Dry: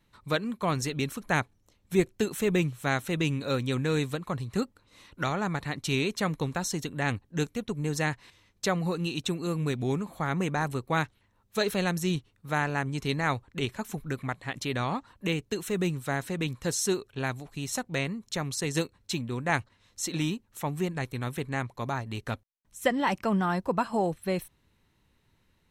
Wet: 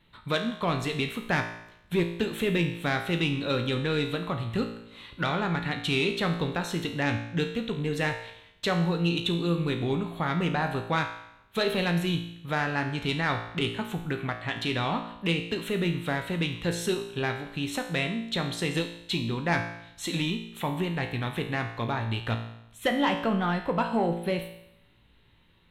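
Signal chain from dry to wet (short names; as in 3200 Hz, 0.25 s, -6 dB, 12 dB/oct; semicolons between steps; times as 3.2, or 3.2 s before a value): resonant high shelf 4400 Hz -8 dB, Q 3; in parallel at +1 dB: compressor, threshold -34 dBFS, peak gain reduction 15.5 dB; on the sum: soft clip -14 dBFS, distortion -21 dB; resonator 57 Hz, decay 0.8 s, harmonics all, mix 80%; gain +8 dB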